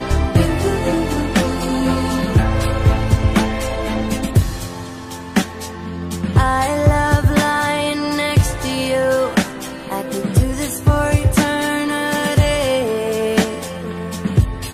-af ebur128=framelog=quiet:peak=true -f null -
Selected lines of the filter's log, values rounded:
Integrated loudness:
  I:         -17.9 LUFS
  Threshold: -28.1 LUFS
Loudness range:
  LRA:         2.7 LU
  Threshold: -38.0 LUFS
  LRA low:   -19.5 LUFS
  LRA high:  -16.9 LUFS
True peak:
  Peak:       -2.8 dBFS